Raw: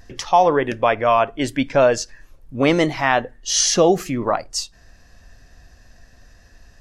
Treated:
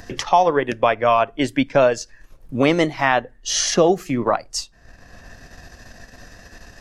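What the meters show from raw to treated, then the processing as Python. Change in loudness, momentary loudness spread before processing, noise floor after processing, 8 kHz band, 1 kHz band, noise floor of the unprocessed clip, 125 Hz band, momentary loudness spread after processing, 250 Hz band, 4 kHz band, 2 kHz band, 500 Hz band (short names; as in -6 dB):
-0.5 dB, 11 LU, -50 dBFS, -3.5 dB, -0.5 dB, -51 dBFS, -0.5 dB, 12 LU, 0.0 dB, -1.5 dB, 0.0 dB, -0.5 dB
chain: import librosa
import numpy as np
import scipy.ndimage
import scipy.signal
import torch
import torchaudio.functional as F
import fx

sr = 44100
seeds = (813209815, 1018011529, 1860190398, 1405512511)

y = fx.transient(x, sr, attack_db=1, sustain_db=-6)
y = fx.band_squash(y, sr, depth_pct=40)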